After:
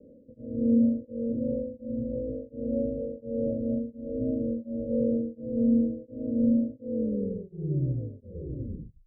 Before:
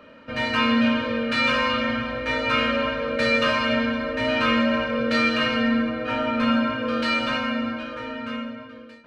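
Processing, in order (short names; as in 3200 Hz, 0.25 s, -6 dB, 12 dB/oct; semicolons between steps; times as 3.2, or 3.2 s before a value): tape stop at the end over 2.14 s; steep low-pass 550 Hz 96 dB/oct; beating tremolo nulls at 1.4 Hz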